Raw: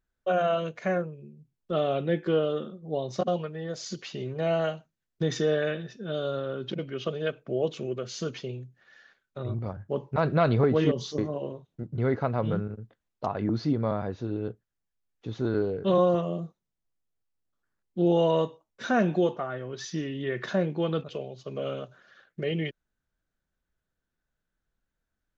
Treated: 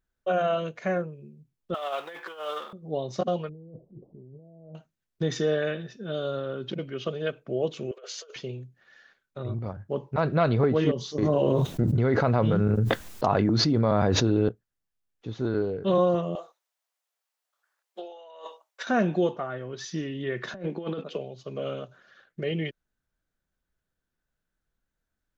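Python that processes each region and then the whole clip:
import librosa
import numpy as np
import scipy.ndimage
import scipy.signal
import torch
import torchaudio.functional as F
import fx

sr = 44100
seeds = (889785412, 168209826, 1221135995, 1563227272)

y = fx.chain(x, sr, fx.law_mismatch(coded='mu'),
    fx.over_compress(threshold_db=-27.0, ratio=-0.5),
    fx.highpass_res(hz=950.0, q=2.0), at=(1.74, 2.73))
y = fx.chain(y, sr, fx.gaussian_blur(sigma=19.0),
    fx.over_compress(threshold_db=-47.0, ratio=-1.0), at=(3.49, 4.75))
y = fx.chain(y, sr, fx.cheby1_highpass(hz=420.0, order=6),
    fx.over_compress(threshold_db=-41.0, ratio=-0.5), at=(7.91, 8.36))
y = fx.chain(y, sr, fx.high_shelf(hz=5700.0, db=5.5),
    fx.env_flatten(amount_pct=100), at=(11.22, 14.49))
y = fx.chain(y, sr, fx.highpass(hz=600.0, slope=24),
    fx.over_compress(threshold_db=-42.0, ratio=-1.0), at=(16.35, 18.87))
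y = fx.chain(y, sr, fx.cheby1_highpass(hz=180.0, order=4),
    fx.high_shelf(hz=4600.0, db=-4.5),
    fx.over_compress(threshold_db=-31.0, ratio=-0.5), at=(20.54, 21.17))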